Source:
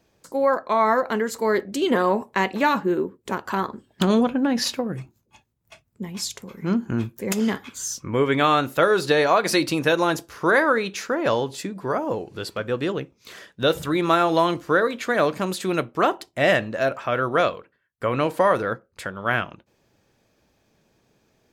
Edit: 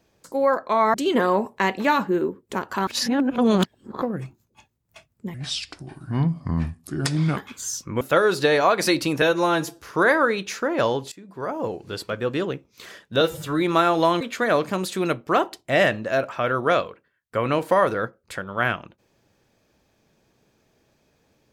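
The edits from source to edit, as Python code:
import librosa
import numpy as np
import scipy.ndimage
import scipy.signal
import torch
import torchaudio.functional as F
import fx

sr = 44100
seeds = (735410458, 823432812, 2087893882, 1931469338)

y = fx.edit(x, sr, fx.cut(start_s=0.94, length_s=0.76),
    fx.reverse_span(start_s=3.63, length_s=1.15),
    fx.speed_span(start_s=6.1, length_s=1.44, speed=0.71),
    fx.cut(start_s=8.18, length_s=0.49),
    fx.stretch_span(start_s=9.88, length_s=0.38, factor=1.5),
    fx.fade_in_from(start_s=11.59, length_s=0.62, floor_db=-22.0),
    fx.stretch_span(start_s=13.68, length_s=0.26, factor=1.5),
    fx.cut(start_s=14.55, length_s=0.34), tone=tone)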